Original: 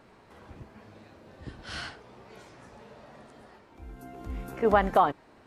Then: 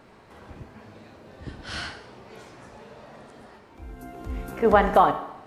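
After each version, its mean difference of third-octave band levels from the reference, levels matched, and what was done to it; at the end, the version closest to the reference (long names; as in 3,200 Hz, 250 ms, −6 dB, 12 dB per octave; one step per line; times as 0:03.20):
1.0 dB: four-comb reverb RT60 0.86 s, combs from 28 ms, DRR 9.5 dB
level +4 dB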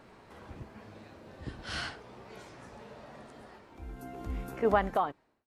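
5.0 dB: fade-out on the ending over 1.26 s
level +1 dB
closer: first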